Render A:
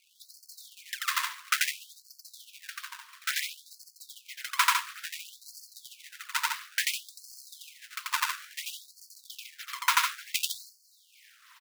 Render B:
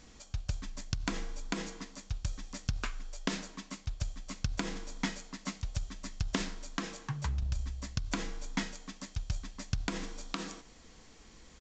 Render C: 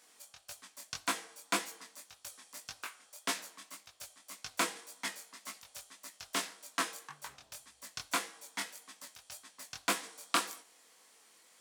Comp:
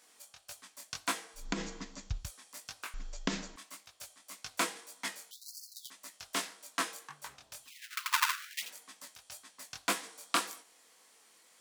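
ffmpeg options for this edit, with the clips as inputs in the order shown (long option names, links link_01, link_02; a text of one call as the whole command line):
ffmpeg -i take0.wav -i take1.wav -i take2.wav -filter_complex "[1:a]asplit=2[link_01][link_02];[0:a]asplit=2[link_03][link_04];[2:a]asplit=5[link_05][link_06][link_07][link_08][link_09];[link_05]atrim=end=1.5[link_10];[link_01]atrim=start=1.34:end=2.31[link_11];[link_06]atrim=start=2.15:end=2.942[link_12];[link_02]atrim=start=2.938:end=3.562[link_13];[link_07]atrim=start=3.558:end=5.312[link_14];[link_03]atrim=start=5.308:end=5.902[link_15];[link_08]atrim=start=5.898:end=7.73[link_16];[link_04]atrim=start=7.63:end=8.71[link_17];[link_09]atrim=start=8.61[link_18];[link_10][link_11]acrossfade=duration=0.16:curve1=tri:curve2=tri[link_19];[link_19][link_12]acrossfade=duration=0.16:curve1=tri:curve2=tri[link_20];[link_20][link_13]acrossfade=duration=0.004:curve1=hsin:curve2=hsin[link_21];[link_21][link_14]acrossfade=duration=0.004:curve1=hsin:curve2=hsin[link_22];[link_22][link_15]acrossfade=duration=0.004:curve1=hsin:curve2=hsin[link_23];[link_23][link_16]acrossfade=duration=0.004:curve1=hsin:curve2=hsin[link_24];[link_24][link_17]acrossfade=duration=0.1:curve1=tri:curve2=tri[link_25];[link_25][link_18]acrossfade=duration=0.1:curve1=tri:curve2=tri" out.wav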